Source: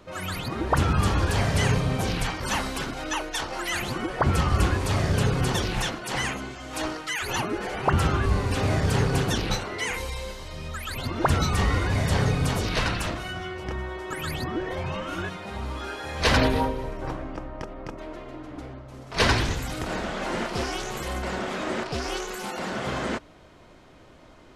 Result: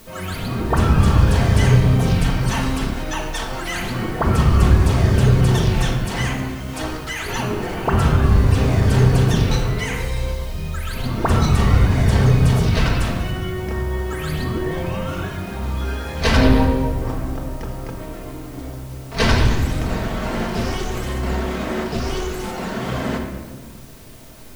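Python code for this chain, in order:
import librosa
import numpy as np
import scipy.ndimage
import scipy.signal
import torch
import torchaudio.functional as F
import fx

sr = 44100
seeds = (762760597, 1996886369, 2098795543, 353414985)

p1 = fx.low_shelf(x, sr, hz=280.0, db=7.0)
p2 = fx.quant_dither(p1, sr, seeds[0], bits=6, dither='triangular')
p3 = p1 + F.gain(torch.from_numpy(p2), -11.0).numpy()
p4 = fx.room_shoebox(p3, sr, seeds[1], volume_m3=1300.0, walls='mixed', distance_m=1.6)
y = F.gain(torch.from_numpy(p4), -2.5).numpy()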